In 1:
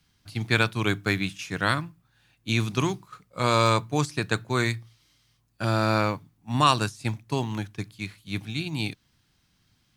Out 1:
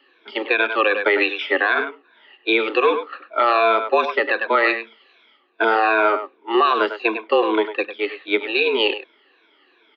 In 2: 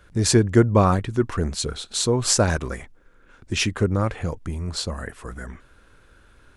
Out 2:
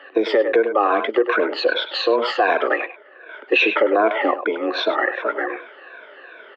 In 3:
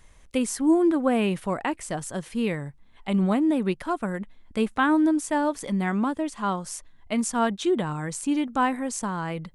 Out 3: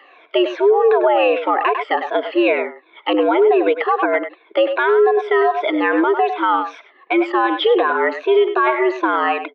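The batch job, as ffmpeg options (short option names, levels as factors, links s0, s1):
-filter_complex "[0:a]afftfilt=real='re*pow(10,17/40*sin(2*PI*(1.5*log(max(b,1)*sr/1024/100)/log(2)-(-2.6)*(pts-256)/sr)))':imag='im*pow(10,17/40*sin(2*PI*(1.5*log(max(b,1)*sr/1024/100)/log(2)-(-2.6)*(pts-256)/sr)))':win_size=1024:overlap=0.75,acompressor=threshold=0.112:ratio=16,asplit=2[s0][s1];[s1]adelay=100,highpass=300,lowpass=3400,asoftclip=type=hard:threshold=0.126,volume=0.316[s2];[s0][s2]amix=inputs=2:normalize=0,highpass=f=250:t=q:w=0.5412,highpass=f=250:t=q:w=1.307,lowpass=f=3200:t=q:w=0.5176,lowpass=f=3200:t=q:w=0.7071,lowpass=f=3200:t=q:w=1.932,afreqshift=110,alimiter=level_in=8.91:limit=0.891:release=50:level=0:latency=1,volume=0.501"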